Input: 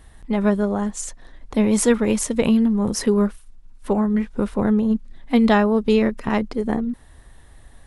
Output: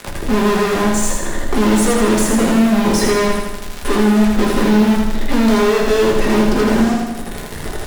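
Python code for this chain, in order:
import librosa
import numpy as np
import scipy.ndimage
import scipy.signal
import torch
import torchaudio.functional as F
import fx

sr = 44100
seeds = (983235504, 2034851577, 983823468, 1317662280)

p1 = fx.peak_eq(x, sr, hz=370.0, db=14.0, octaves=0.56)
p2 = fx.rider(p1, sr, range_db=4, speed_s=0.5)
p3 = p1 + (p2 * librosa.db_to_amplitude(-2.0))
p4 = fx.dmg_crackle(p3, sr, seeds[0], per_s=58.0, level_db=-23.0)
p5 = fx.fuzz(p4, sr, gain_db=33.0, gate_db=-34.0)
p6 = p5 + fx.echo_feedback(p5, sr, ms=80, feedback_pct=54, wet_db=-3.5, dry=0)
p7 = fx.room_shoebox(p6, sr, seeds[1], volume_m3=120.0, walls='furnished', distance_m=1.3)
p8 = fx.band_squash(p7, sr, depth_pct=40)
y = p8 * librosa.db_to_amplitude(-6.0)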